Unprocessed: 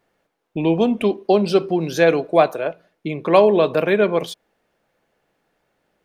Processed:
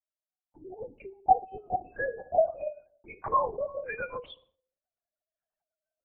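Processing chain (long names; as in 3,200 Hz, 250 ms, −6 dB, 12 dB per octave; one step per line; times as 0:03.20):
three sine waves on the formant tracks
camcorder AGC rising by 8 dB per second
gate on every frequency bin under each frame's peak −15 dB strong
0:00.82–0:01.67: low-pass filter 1,800 Hz 12 dB per octave
noise gate with hold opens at −36 dBFS
four-pole ladder high-pass 790 Hz, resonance 80%
rectangular room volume 860 cubic metres, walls furnished, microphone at 0.51 metres
linear-prediction vocoder at 8 kHz whisper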